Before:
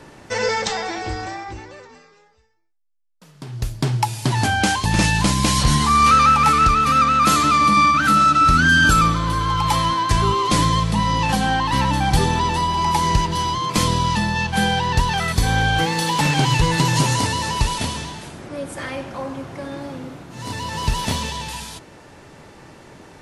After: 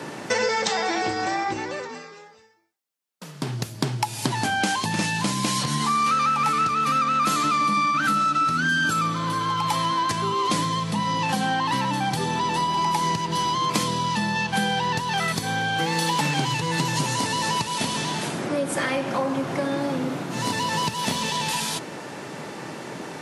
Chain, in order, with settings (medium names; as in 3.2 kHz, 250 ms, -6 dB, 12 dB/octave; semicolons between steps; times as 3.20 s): compression, threshold -30 dBFS, peak gain reduction 18 dB; high-pass 140 Hz 24 dB/octave; trim +9 dB